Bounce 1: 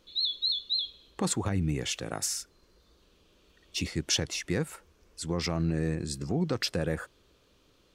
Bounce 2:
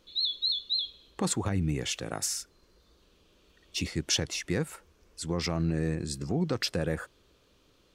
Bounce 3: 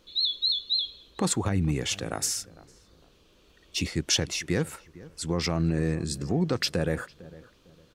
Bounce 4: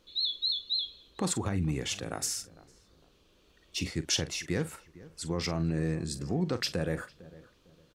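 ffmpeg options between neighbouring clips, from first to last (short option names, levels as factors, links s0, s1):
-af anull
-filter_complex "[0:a]asplit=2[s0][s1];[s1]adelay=453,lowpass=f=1500:p=1,volume=0.112,asplit=2[s2][s3];[s3]adelay=453,lowpass=f=1500:p=1,volume=0.3,asplit=2[s4][s5];[s5]adelay=453,lowpass=f=1500:p=1,volume=0.3[s6];[s0][s2][s4][s6]amix=inputs=4:normalize=0,volume=1.41"
-filter_complex "[0:a]asplit=2[s0][s1];[s1]adelay=44,volume=0.211[s2];[s0][s2]amix=inputs=2:normalize=0,volume=0.596"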